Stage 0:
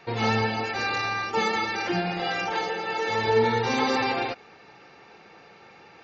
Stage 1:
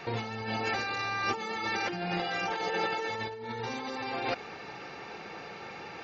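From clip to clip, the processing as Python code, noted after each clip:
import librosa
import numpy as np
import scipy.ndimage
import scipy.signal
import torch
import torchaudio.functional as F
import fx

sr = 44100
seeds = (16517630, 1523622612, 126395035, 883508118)

y = fx.over_compress(x, sr, threshold_db=-34.0, ratio=-1.0)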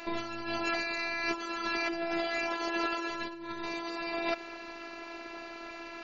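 y = fx.robotise(x, sr, hz=337.0)
y = y * librosa.db_to_amplitude(2.5)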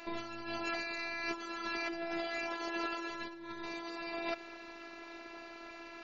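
y = x + 10.0 ** (-22.0 / 20.0) * np.pad(x, (int(852 * sr / 1000.0), 0))[:len(x)]
y = y * librosa.db_to_amplitude(-5.5)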